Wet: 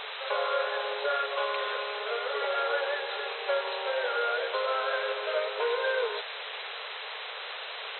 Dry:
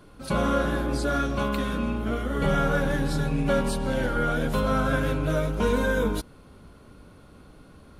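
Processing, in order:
downward compressor 6 to 1, threshold −28 dBFS, peak gain reduction 9 dB
bit-depth reduction 6 bits, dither triangular
linear-phase brick-wall band-pass 400–4,100 Hz
level +5 dB

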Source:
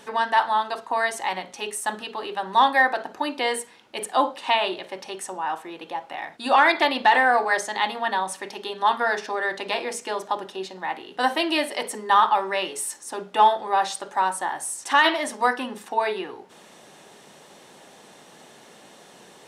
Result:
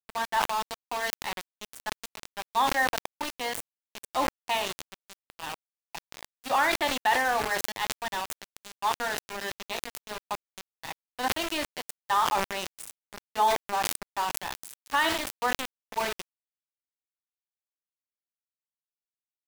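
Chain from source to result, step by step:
centre clipping without the shift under −22.5 dBFS
level that may fall only so fast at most 53 dB per second
level −7.5 dB

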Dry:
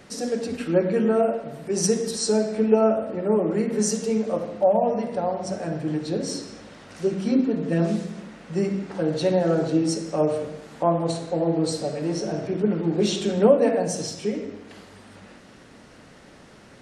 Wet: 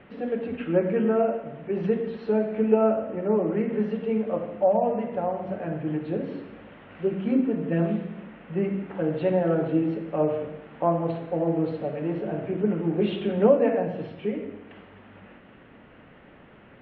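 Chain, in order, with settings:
Butterworth low-pass 3,100 Hz 48 dB per octave
level −2 dB

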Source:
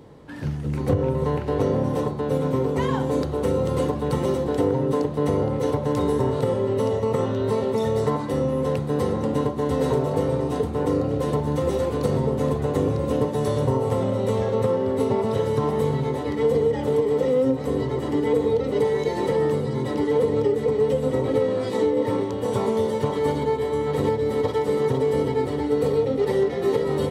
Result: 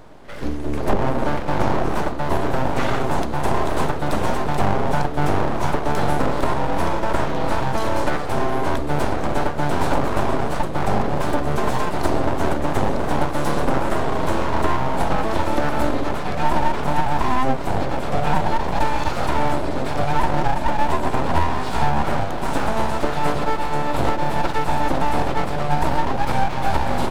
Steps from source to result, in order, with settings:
echo ahead of the sound 48 ms −16.5 dB
full-wave rectification
level +5 dB

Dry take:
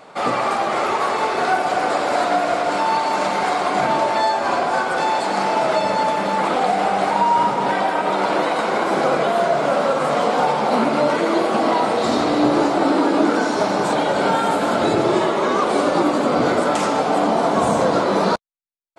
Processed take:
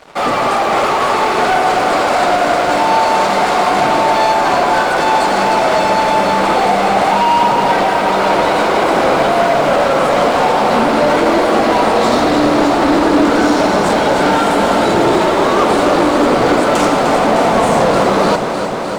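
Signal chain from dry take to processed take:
leveller curve on the samples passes 3
on a send: delay that swaps between a low-pass and a high-pass 152 ms, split 880 Hz, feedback 89%, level −7 dB
on the sum: level −3.5 dB

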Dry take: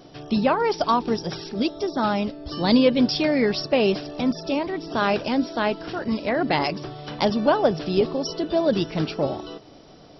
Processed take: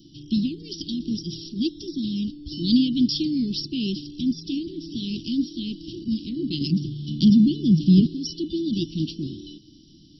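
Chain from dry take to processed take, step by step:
Chebyshev band-stop filter 340–3,000 Hz, order 5
0:06.61–0:08.07: parametric band 180 Hz +14.5 dB 0.94 octaves

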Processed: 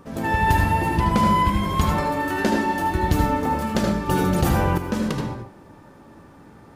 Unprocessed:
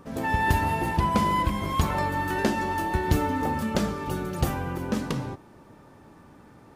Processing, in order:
convolution reverb RT60 0.30 s, pre-delay 73 ms, DRR 2.5 dB
0:04.09–0:04.78: envelope flattener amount 70%
level +2 dB

